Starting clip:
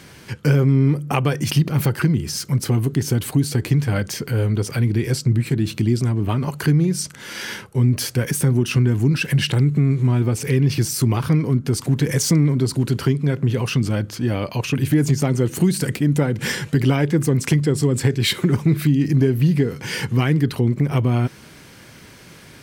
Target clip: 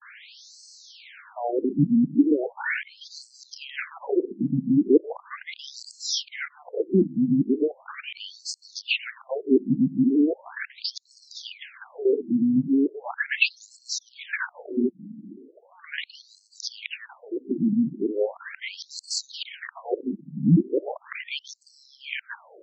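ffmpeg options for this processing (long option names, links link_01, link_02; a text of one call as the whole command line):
ffmpeg -i in.wav -af "areverse,afftfilt=real='re*between(b*sr/1024,210*pow(5900/210,0.5+0.5*sin(2*PI*0.38*pts/sr))/1.41,210*pow(5900/210,0.5+0.5*sin(2*PI*0.38*pts/sr))*1.41)':imag='im*between(b*sr/1024,210*pow(5900/210,0.5+0.5*sin(2*PI*0.38*pts/sr))/1.41,210*pow(5900/210,0.5+0.5*sin(2*PI*0.38*pts/sr))*1.41)':win_size=1024:overlap=0.75,volume=4.5dB" out.wav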